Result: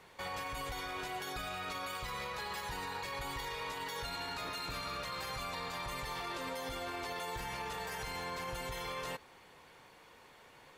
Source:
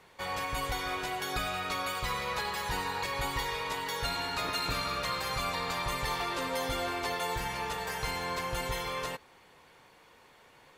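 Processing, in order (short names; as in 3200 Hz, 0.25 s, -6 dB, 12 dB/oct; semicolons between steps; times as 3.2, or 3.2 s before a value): limiter -32 dBFS, peak gain reduction 11 dB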